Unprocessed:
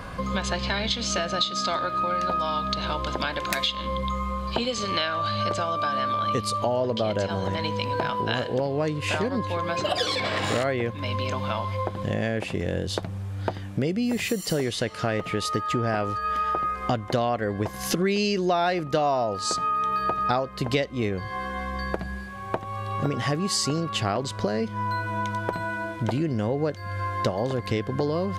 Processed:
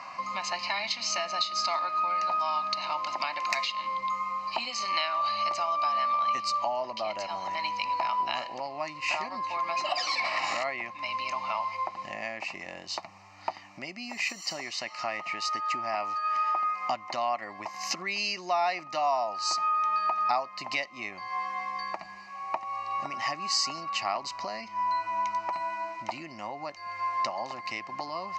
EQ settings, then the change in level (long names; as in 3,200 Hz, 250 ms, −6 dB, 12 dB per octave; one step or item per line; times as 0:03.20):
band-pass filter 640–6,300 Hz
phaser with its sweep stopped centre 2,300 Hz, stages 8
+2.0 dB